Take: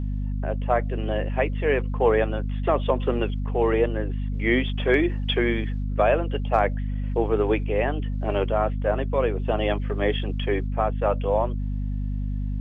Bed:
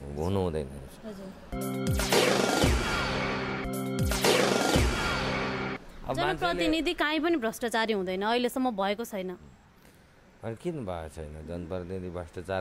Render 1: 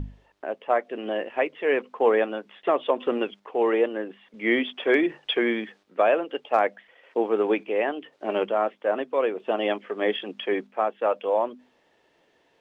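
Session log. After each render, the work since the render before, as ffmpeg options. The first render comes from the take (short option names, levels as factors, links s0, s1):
-af "bandreject=f=50:t=h:w=6,bandreject=f=100:t=h:w=6,bandreject=f=150:t=h:w=6,bandreject=f=200:t=h:w=6,bandreject=f=250:t=h:w=6"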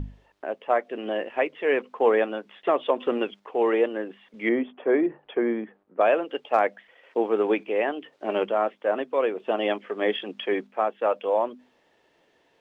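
-filter_complex "[0:a]asettb=1/sr,asplit=3[s0][s1][s2];[s0]atrim=end=4.494[s3];[s1]atrim=start=4.49:end=6.01,asetpts=PTS-STARTPTS,afade=t=in:d=0.004:c=qsin,afade=t=out:st=1.516:d=0.004:c=qsin,lowpass=1100[s4];[s2]atrim=start=6.006[s5];[s3][s4]acrossfade=d=0.004:c1=hsin:c2=qsin[s6];[s6][s5]acrossfade=d=0.004:c1=qsin:c2=hsin"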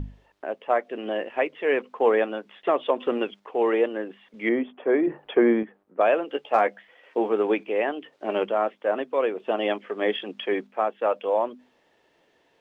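-filter_complex "[0:a]asettb=1/sr,asplit=3[s0][s1][s2];[s0]atrim=end=5.074[s3];[s1]atrim=start=5.07:end=5.63,asetpts=PTS-STARTPTS,afade=t=in:d=0.004:c=qsin,afade=t=out:st=0.556:d=0.004:c=qsin,acontrast=52[s4];[s2]atrim=start=5.626[s5];[s3][s4]acrossfade=d=0.004:c1=hsin:c2=qsin[s6];[s6][s5]acrossfade=d=0.004:c1=qsin:c2=hsin,asettb=1/sr,asplit=3[s7][s8][s9];[s7]atrim=end=6.264[s10];[s8]atrim=start=6.26:end=7.33,asetpts=PTS-STARTPTS,afade=t=in:d=0.004:c=qsin,afade=t=out:st=1.066:d=0.004:c=qsin,asplit=2[s11][s12];[s12]adelay=14,volume=0.501[s13];[s11][s13]amix=inputs=2:normalize=0,atrim=end_sample=47187[s14];[s9]atrim=start=7.326[s15];[s10][s14]acrossfade=d=0.004:c1=hsin:c2=qsin[s16];[s16][s15]acrossfade=d=0.004:c1=qsin:c2=hsin"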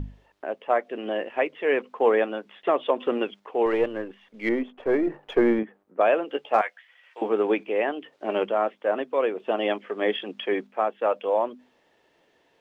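-filter_complex "[0:a]asettb=1/sr,asplit=3[s0][s1][s2];[s0]atrim=end=3.664[s3];[s1]atrim=start=3.66:end=5.59,asetpts=PTS-STARTPTS,afade=t=in:d=0.004:c=qsin,afade=t=out:st=1.926:d=0.004:c=qsin,aeval=exprs='if(lt(val(0),0),0.708*val(0),val(0))':c=same[s4];[s2]atrim=start=5.586[s5];[s3][s4]acrossfade=d=0.004:c1=hsin:c2=qsin[s6];[s6][s5]acrossfade=d=0.004:c1=qsin:c2=hsin,asettb=1/sr,asplit=3[s7][s8][s9];[s7]atrim=end=6.614[s10];[s8]atrim=start=6.61:end=7.22,asetpts=PTS-STARTPTS,afade=t=in:d=0.004:c=qsin,afade=t=out:st=0.606:d=0.004:c=qsin,highpass=1400[s11];[s9]atrim=start=7.216[s12];[s10][s11]acrossfade=d=0.004:c1=hsin:c2=qsin[s13];[s13][s12]acrossfade=d=0.004:c1=qsin:c2=hsin"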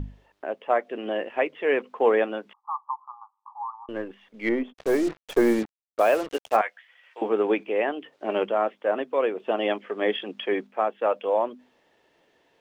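-filter_complex "[0:a]asettb=1/sr,asplit=3[s0][s1][s2];[s0]atrim=end=2.534[s3];[s1]atrim=start=2.53:end=3.89,asetpts=PTS-STARTPTS,afade=t=in:d=0.004:c=qsin,afade=t=out:st=1.356:d=0.004:c=qsin,asuperpass=centerf=1000:order=12:qfactor=2.5[s4];[s2]atrim=start=3.886[s5];[s3][s4]acrossfade=d=0.004:c1=hsin:c2=qsin[s6];[s6][s5]acrossfade=d=0.004:c1=qsin:c2=hsin,asplit=3[s7][s8][s9];[s7]afade=t=out:st=4.72:d=0.02[s10];[s8]acrusher=bits=5:mix=0:aa=0.5,afade=t=in:st=4.72:d=0.02,afade=t=out:st=6.55:d=0.02[s11];[s9]afade=t=in:st=6.55:d=0.02[s12];[s10][s11][s12]amix=inputs=3:normalize=0"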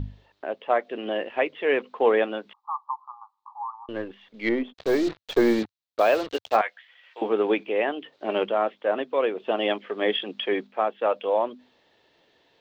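-af "equalizer=f=100:t=o:w=0.67:g=5,equalizer=f=4000:t=o:w=0.67:g=10,equalizer=f=10000:t=o:w=0.67:g=-11"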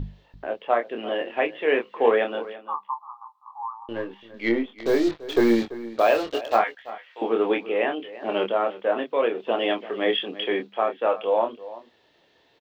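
-filter_complex "[0:a]asplit=2[s0][s1];[s1]adelay=26,volume=0.531[s2];[s0][s2]amix=inputs=2:normalize=0,asplit=2[s3][s4];[s4]adelay=338.2,volume=0.158,highshelf=f=4000:g=-7.61[s5];[s3][s5]amix=inputs=2:normalize=0"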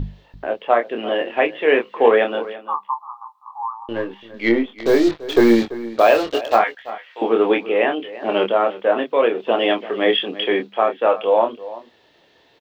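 -af "volume=2,alimiter=limit=0.794:level=0:latency=1"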